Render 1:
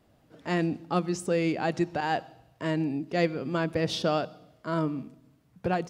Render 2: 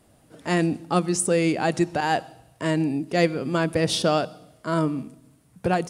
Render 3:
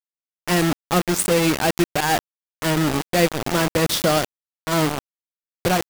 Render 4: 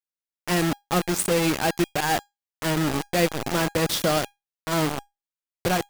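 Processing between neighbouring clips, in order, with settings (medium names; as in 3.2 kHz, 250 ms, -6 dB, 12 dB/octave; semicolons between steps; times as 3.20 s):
peaking EQ 9.4 kHz +15 dB 0.68 oct; trim +5 dB
bit crusher 4-bit; trim +2 dB
feedback comb 810 Hz, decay 0.2 s, harmonics all, mix 50%; trim +2 dB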